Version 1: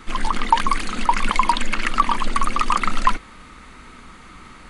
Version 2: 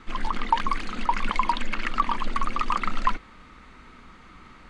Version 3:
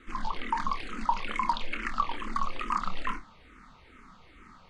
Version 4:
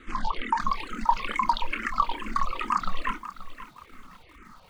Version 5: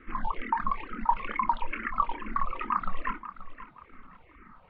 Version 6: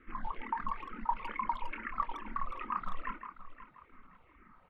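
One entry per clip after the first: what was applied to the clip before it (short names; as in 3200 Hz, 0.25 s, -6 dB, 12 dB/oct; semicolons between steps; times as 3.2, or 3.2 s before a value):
bit-crush 10-bit; air absorption 91 m; gain -5.5 dB
on a send: flutter echo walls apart 4.6 m, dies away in 0.21 s; on the sum: endless phaser -2.3 Hz; gain -3 dB
reverb removal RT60 1.6 s; lo-fi delay 0.53 s, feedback 35%, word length 9-bit, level -13 dB; gain +4.5 dB
LPF 2400 Hz 24 dB/oct; gain -2.5 dB
speakerphone echo 0.16 s, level -10 dB; gain -7.5 dB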